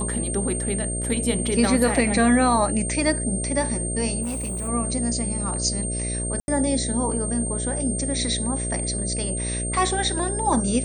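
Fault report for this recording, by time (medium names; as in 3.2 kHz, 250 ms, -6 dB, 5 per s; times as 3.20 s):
buzz 60 Hz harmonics 11 -29 dBFS
whine 8.7 kHz -28 dBFS
4.22–4.69 s: clipped -25 dBFS
6.40–6.48 s: dropout 81 ms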